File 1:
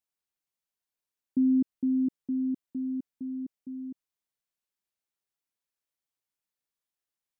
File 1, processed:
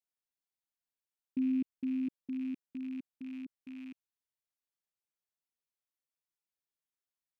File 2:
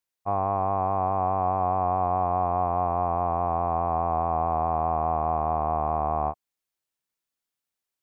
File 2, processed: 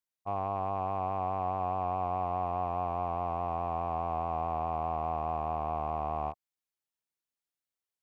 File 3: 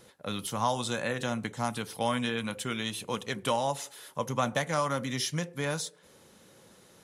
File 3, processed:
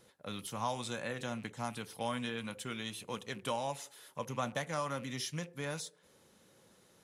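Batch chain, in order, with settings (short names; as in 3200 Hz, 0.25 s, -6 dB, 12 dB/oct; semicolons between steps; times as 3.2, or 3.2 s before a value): rattling part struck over -43 dBFS, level -38 dBFS; gain -7.5 dB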